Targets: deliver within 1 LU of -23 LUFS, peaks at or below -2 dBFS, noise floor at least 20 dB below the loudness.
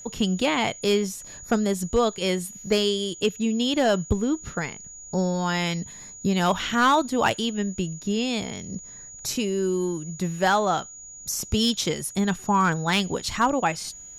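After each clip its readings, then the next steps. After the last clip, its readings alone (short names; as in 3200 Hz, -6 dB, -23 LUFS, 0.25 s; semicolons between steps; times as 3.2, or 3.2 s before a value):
clipped 0.2%; flat tops at -12.5 dBFS; steady tone 6800 Hz; tone level -40 dBFS; loudness -24.5 LUFS; peak -12.5 dBFS; loudness target -23.0 LUFS
-> clip repair -12.5 dBFS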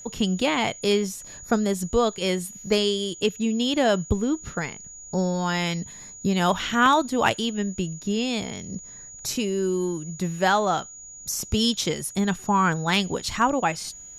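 clipped 0.0%; steady tone 6800 Hz; tone level -40 dBFS
-> notch 6800 Hz, Q 30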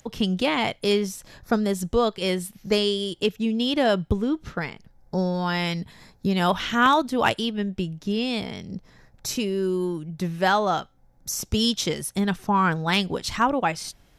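steady tone none; loudness -24.5 LUFS; peak -4.5 dBFS; loudness target -23.0 LUFS
-> gain +1.5 dB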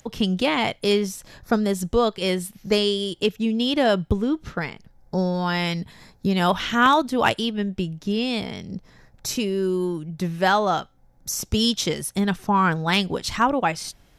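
loudness -23.0 LUFS; peak -3.0 dBFS; noise floor -56 dBFS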